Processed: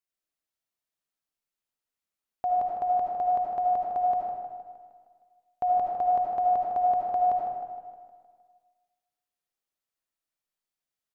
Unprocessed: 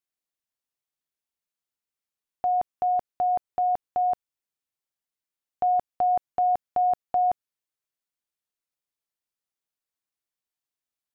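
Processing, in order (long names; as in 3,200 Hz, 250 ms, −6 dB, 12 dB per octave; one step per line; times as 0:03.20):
repeating echo 155 ms, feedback 58%, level −11 dB
comb and all-pass reverb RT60 1.3 s, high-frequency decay 0.5×, pre-delay 35 ms, DRR −1.5 dB
level −3.5 dB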